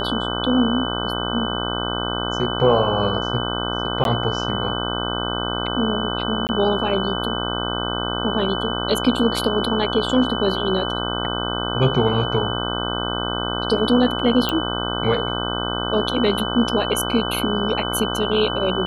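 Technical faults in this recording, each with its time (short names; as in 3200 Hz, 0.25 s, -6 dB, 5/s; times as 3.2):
buzz 60 Hz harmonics 26 -26 dBFS
tone 3000 Hz -27 dBFS
4.04–4.05 gap 12 ms
6.47–6.49 gap 19 ms
14.49 pop -7 dBFS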